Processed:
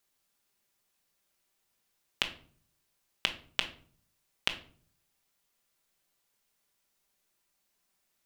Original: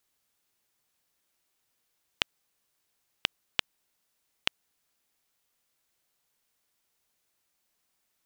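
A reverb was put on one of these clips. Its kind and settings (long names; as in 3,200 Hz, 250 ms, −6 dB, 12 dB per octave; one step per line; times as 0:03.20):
rectangular room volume 490 cubic metres, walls furnished, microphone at 1.2 metres
level −1.5 dB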